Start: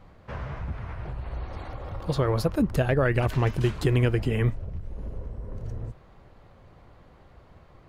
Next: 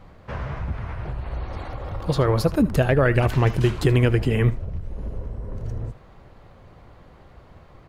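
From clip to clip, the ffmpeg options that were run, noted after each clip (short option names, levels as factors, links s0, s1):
-af "aecho=1:1:77:0.133,volume=1.68"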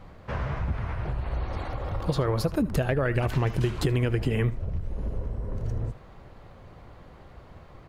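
-af "acompressor=threshold=0.0891:ratio=10"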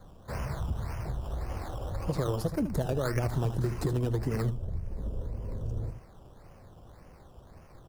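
-filter_complex "[0:a]aecho=1:1:76:0.299,acrossover=split=330|920|4800[s0][s1][s2][s3];[s2]acrusher=samples=16:mix=1:aa=0.000001:lfo=1:lforange=9.6:lforate=1.8[s4];[s0][s1][s4][s3]amix=inputs=4:normalize=0,volume=0.596"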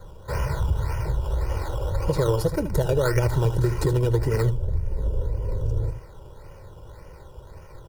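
-af "aecho=1:1:2.1:0.69,volume=2"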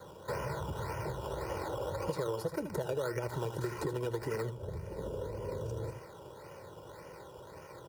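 -filter_complex "[0:a]highpass=190,acrossover=split=810|2000[s0][s1][s2];[s0]acompressor=threshold=0.0178:ratio=4[s3];[s1]acompressor=threshold=0.00562:ratio=4[s4];[s2]acompressor=threshold=0.00282:ratio=4[s5];[s3][s4][s5]amix=inputs=3:normalize=0"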